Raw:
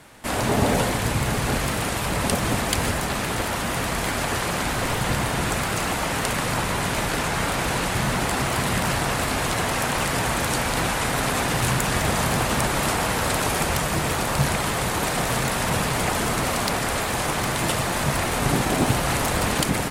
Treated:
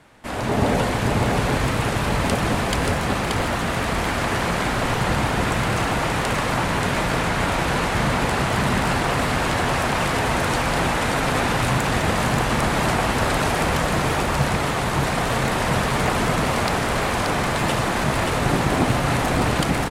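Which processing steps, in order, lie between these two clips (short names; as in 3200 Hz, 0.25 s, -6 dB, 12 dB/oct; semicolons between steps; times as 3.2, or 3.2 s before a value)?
LPF 3500 Hz 6 dB/oct; AGC gain up to 5 dB; on a send: echo 0.58 s -4 dB; on the sum: gain -3 dB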